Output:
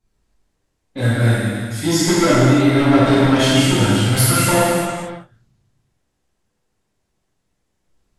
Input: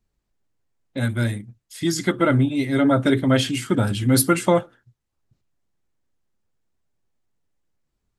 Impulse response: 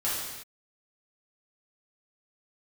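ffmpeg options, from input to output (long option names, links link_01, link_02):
-filter_complex "[0:a]asettb=1/sr,asplit=3[link_01][link_02][link_03];[link_01]atrim=end=3.774[link_04];[link_02]atrim=start=3.77:end=4.5,asetpts=PTS-STARTPTS,afade=type=in:duration=0.004:curve=qsin,afade=type=out:start_time=0.726:duration=0.004:curve=qsin,equalizer=frequency=320:width=1.2:gain=-11.5[link_05];[link_03]atrim=start=4.496[link_06];[link_04][link_05]acrossfade=duration=0.004:curve1=hsin:curve2=qsin[link_07];[link_07][link_06]acrossfade=duration=0.004:curve1=qsin:curve2=hsin,asoftclip=type=tanh:threshold=-18.5dB[link_08];[1:a]atrim=start_sample=2205,asetrate=25578,aresample=44100[link_09];[link_08][link_09]afir=irnorm=-1:irlink=0,volume=-2dB"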